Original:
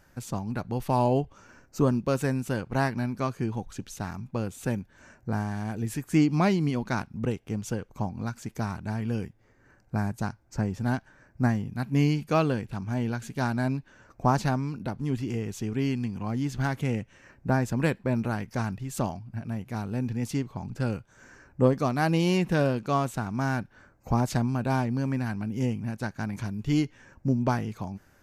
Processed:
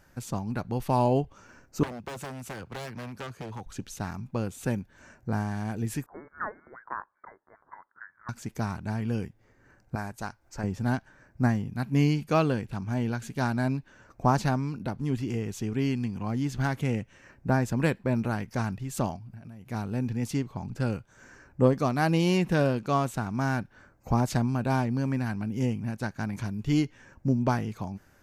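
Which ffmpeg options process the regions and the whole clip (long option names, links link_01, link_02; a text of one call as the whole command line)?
ffmpeg -i in.wav -filter_complex "[0:a]asettb=1/sr,asplit=3[link_01][link_02][link_03];[link_01]atrim=end=1.834[link_04];[link_02]atrim=start=1.83:end=3.66,asetpts=PTS-STARTPTS,afade=type=in:duration=0.004:curve=qsin,afade=type=out:start_time=1.826:duration=0.004:curve=qsin,aeval=exprs='0.0562*(abs(mod(val(0)/0.0562+3,4)-2)-1)':channel_layout=same,acrossover=split=110|460[link_05][link_06][link_07];[link_05]acompressor=threshold=-41dB:ratio=4[link_08];[link_06]acompressor=threshold=-44dB:ratio=4[link_09];[link_07]acompressor=threshold=-38dB:ratio=4[link_10];[link_08][link_09][link_10]amix=inputs=3:normalize=0,highpass=52[link_11];[link_03]atrim=start=3.656[link_12];[link_04][link_11]acrossfade=duration=0.004:curve1=hsin:curve2=qsin[link_13];[link_13][link_12]acrossfade=duration=0.004:curve1=qsin:curve2=hsin,asettb=1/sr,asplit=3[link_14][link_15][link_16];[link_14]atrim=end=6.064[link_17];[link_15]atrim=start=6.06:end=8.29,asetpts=PTS-STARTPTS,afade=type=in:duration=0.004:curve=qsin,afade=type=out:start_time=2.226:duration=0.004:curve=qsin,highpass=frequency=1100:width=0.5412,highpass=frequency=1100:width=1.3066,asoftclip=type=hard:threshold=-21.5dB,lowpass=frequency=2100:width_type=q:width=0.5098,lowpass=frequency=2100:width_type=q:width=0.6013,lowpass=frequency=2100:width_type=q:width=0.9,lowpass=frequency=2100:width_type=q:width=2.563,afreqshift=-2500[link_18];[link_16]atrim=start=8.286[link_19];[link_17][link_18]acrossfade=duration=0.004:curve1=hsin:curve2=qsin[link_20];[link_20][link_19]acrossfade=duration=0.004:curve1=qsin:curve2=hsin,asettb=1/sr,asplit=3[link_21][link_22][link_23];[link_21]atrim=end=9.954[link_24];[link_22]atrim=start=9.95:end=10.64,asetpts=PTS-STARTPTS,afade=type=in:duration=0.004:curve=qsin,afade=type=out:start_time=0.686:duration=0.004:curve=qsin,equalizer=frequency=140:width=0.51:gain=-11,acompressor=mode=upward:threshold=-54dB:ratio=2.5:attack=3.2:release=140:knee=2.83:detection=peak[link_25];[link_23]atrim=start=10.636[link_26];[link_24][link_25]acrossfade=duration=0.004:curve1=hsin:curve2=qsin[link_27];[link_27][link_26]acrossfade=duration=0.004:curve1=qsin:curve2=hsin,asettb=1/sr,asplit=3[link_28][link_29][link_30];[link_28]atrim=end=19.164[link_31];[link_29]atrim=start=19.16:end=19.67,asetpts=PTS-STARTPTS,afade=type=in:duration=0.004:curve=qsin,afade=type=out:start_time=0.506:duration=0.004:curve=qsin,highshelf=frequency=10000:gain=6,acompressor=threshold=-40dB:ratio=12:attack=3.2:release=140:knee=1:detection=peak[link_32];[link_30]atrim=start=19.666[link_33];[link_31][link_32]acrossfade=duration=0.004:curve1=hsin:curve2=qsin[link_34];[link_34][link_33]acrossfade=duration=0.004:curve1=qsin:curve2=hsin" out.wav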